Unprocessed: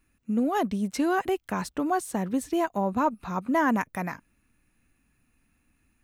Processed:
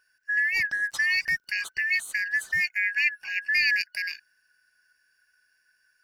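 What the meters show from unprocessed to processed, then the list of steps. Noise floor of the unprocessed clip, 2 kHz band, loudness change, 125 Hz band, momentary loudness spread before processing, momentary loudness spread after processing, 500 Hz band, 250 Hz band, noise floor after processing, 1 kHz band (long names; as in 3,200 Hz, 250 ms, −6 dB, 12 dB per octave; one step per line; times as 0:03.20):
−71 dBFS, +13.5 dB, +2.5 dB, below −15 dB, 8 LU, 8 LU, below −30 dB, below −30 dB, −70 dBFS, below −25 dB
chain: band-splitting scrambler in four parts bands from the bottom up 3142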